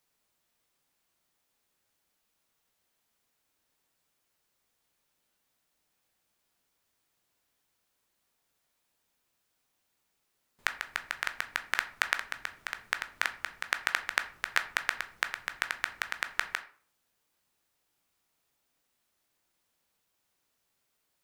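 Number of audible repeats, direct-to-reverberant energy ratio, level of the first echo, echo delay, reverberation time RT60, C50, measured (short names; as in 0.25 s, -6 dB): none, 8.0 dB, none, none, 0.45 s, 14.0 dB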